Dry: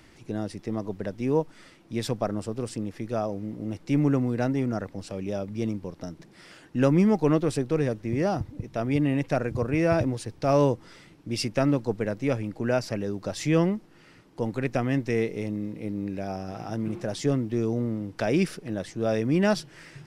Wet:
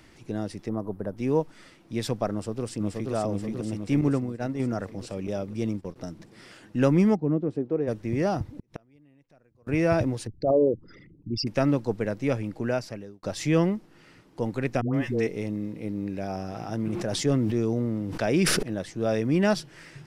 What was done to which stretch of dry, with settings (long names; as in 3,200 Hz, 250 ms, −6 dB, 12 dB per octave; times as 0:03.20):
0:00.69–0:01.17: flat-topped bell 3,800 Hz −15 dB 2.3 octaves
0:02.32–0:03.13: delay throw 480 ms, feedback 65%, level −2.5 dB
0:04.01–0:04.60: downward expander −21 dBFS
0:05.27–0:05.96: noise gate −39 dBFS, range −13 dB
0:07.14–0:07.87: resonant band-pass 160 Hz → 460 Hz, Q 1
0:08.56–0:09.67: gate with flip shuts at −25 dBFS, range −34 dB
0:10.27–0:11.47: spectral envelope exaggerated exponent 3
0:12.58–0:13.23: fade out
0:14.81–0:15.27: all-pass dispersion highs, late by 130 ms, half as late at 630 Hz
0:16.17–0:18.63: level that may fall only so fast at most 25 dB per second